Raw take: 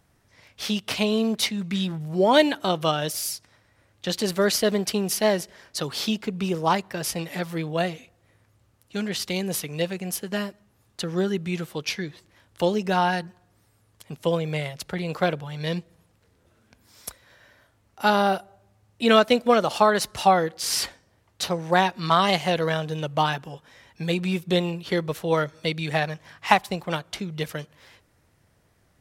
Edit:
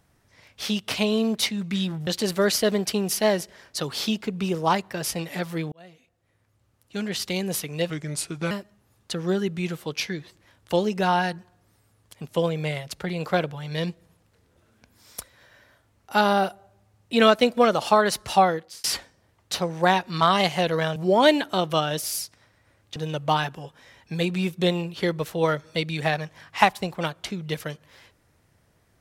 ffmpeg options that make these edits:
ffmpeg -i in.wav -filter_complex "[0:a]asplit=8[link_01][link_02][link_03][link_04][link_05][link_06][link_07][link_08];[link_01]atrim=end=2.072[link_09];[link_02]atrim=start=4.068:end=7.72,asetpts=PTS-STARTPTS,afade=type=out:start_time=3.648:duration=0.004:curve=hsin[link_10];[link_03]atrim=start=7.72:end=9.904,asetpts=PTS-STARTPTS,afade=type=in:duration=1.47[link_11];[link_04]atrim=start=9.9:end=10.4,asetpts=PTS-STARTPTS,asetrate=36162,aresample=44100,atrim=end_sample=26890,asetpts=PTS-STARTPTS[link_12];[link_05]atrim=start=10.396:end=20.73,asetpts=PTS-STARTPTS,afade=type=out:start_time=9.924:duration=0.41[link_13];[link_06]atrim=start=20.73:end=22.852,asetpts=PTS-STARTPTS,afade=type=in:duration=0.004:curve=hsin[link_14];[link_07]atrim=start=2.068:end=4.072[link_15];[link_08]atrim=start=22.848[link_16];[link_10][link_11]concat=n=2:v=0:a=1[link_17];[link_09][link_17]acrossfade=duration=0.004:curve1=hsin:curve2=hsin[link_18];[link_18][link_12]acrossfade=duration=0.004:curve1=hsin:curve2=hsin[link_19];[link_13][link_14]concat=n=2:v=0:a=1[link_20];[link_19][link_20]acrossfade=duration=0.004:curve1=hsin:curve2=hsin[link_21];[link_21][link_15]acrossfade=duration=0.004:curve1=hsin:curve2=hsin[link_22];[link_22][link_16]acrossfade=duration=0.004:curve1=hsin:curve2=hsin" out.wav

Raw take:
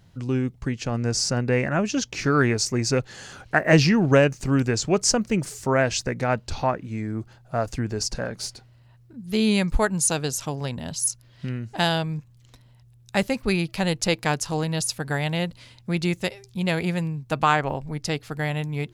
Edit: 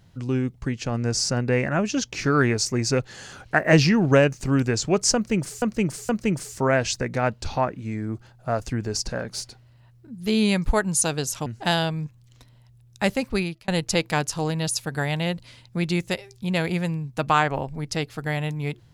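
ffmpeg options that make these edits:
ffmpeg -i in.wav -filter_complex "[0:a]asplit=5[link_01][link_02][link_03][link_04][link_05];[link_01]atrim=end=5.622[link_06];[link_02]atrim=start=5.148:end=5.622[link_07];[link_03]atrim=start=5.148:end=10.522[link_08];[link_04]atrim=start=11.588:end=13.81,asetpts=PTS-STARTPTS,afade=type=out:start_time=1.862:duration=0.36[link_09];[link_05]atrim=start=13.81,asetpts=PTS-STARTPTS,afade=type=in:duration=0.004:curve=hsin[link_10];[link_06][link_07]acrossfade=duration=0.004:curve1=hsin:curve2=hsin[link_11];[link_11][link_08]acrossfade=duration=0.004:curve1=hsin:curve2=hsin[link_12];[link_09][link_10]concat=n=2:v=0:a=1[link_13];[link_12][link_13]acrossfade=duration=0.004:curve1=hsin:curve2=hsin" out.wav

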